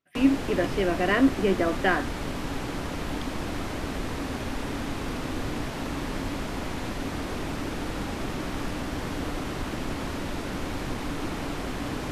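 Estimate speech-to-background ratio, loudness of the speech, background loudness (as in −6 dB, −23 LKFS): 7.5 dB, −25.0 LKFS, −32.5 LKFS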